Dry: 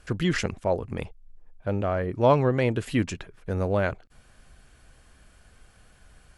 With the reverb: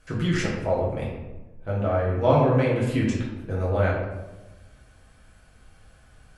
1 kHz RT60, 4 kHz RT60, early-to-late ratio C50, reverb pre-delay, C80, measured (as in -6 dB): 1.0 s, 0.60 s, 1.5 dB, 5 ms, 4.5 dB